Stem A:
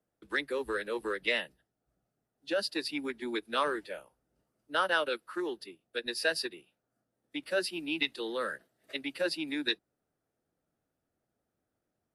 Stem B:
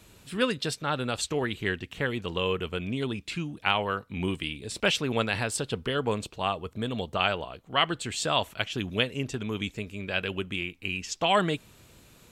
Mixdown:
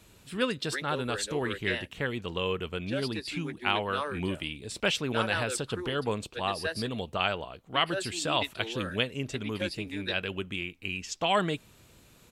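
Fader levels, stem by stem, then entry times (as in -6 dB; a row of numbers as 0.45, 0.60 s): -4.0, -2.5 dB; 0.40, 0.00 s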